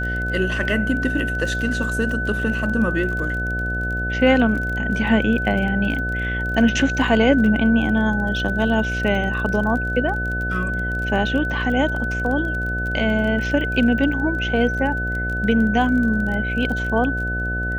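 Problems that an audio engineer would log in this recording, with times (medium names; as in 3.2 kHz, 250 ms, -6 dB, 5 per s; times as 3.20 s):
buzz 60 Hz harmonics 12 -26 dBFS
crackle 27 per s -28 dBFS
whine 1.5 kHz -24 dBFS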